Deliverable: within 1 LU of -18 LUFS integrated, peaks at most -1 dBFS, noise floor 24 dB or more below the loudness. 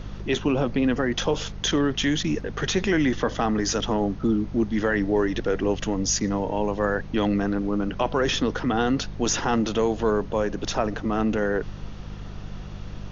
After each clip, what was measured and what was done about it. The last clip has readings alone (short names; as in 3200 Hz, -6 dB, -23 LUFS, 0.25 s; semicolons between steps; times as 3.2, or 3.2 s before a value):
hum 50 Hz; harmonics up to 200 Hz; hum level -35 dBFS; noise floor -37 dBFS; noise floor target -49 dBFS; loudness -24.5 LUFS; peak -9.0 dBFS; loudness target -18.0 LUFS
-> de-hum 50 Hz, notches 4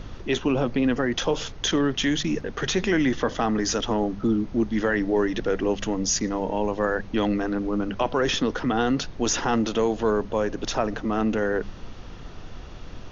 hum none; noise floor -40 dBFS; noise floor target -49 dBFS
-> noise print and reduce 9 dB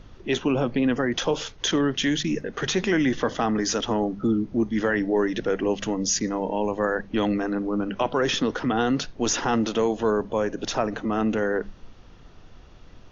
noise floor -48 dBFS; noise floor target -49 dBFS
-> noise print and reduce 6 dB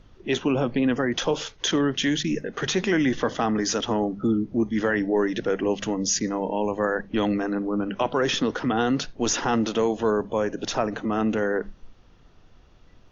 noise floor -54 dBFS; loudness -25.0 LUFS; peak -10.0 dBFS; loudness target -18.0 LUFS
-> gain +7 dB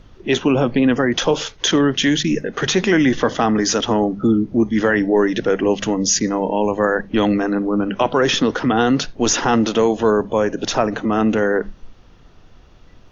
loudness -18.0 LUFS; peak -3.0 dBFS; noise floor -47 dBFS